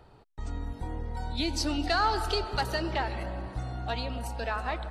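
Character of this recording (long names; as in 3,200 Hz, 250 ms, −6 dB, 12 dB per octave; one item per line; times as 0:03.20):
background noise floor −56 dBFS
spectral slope −4.5 dB per octave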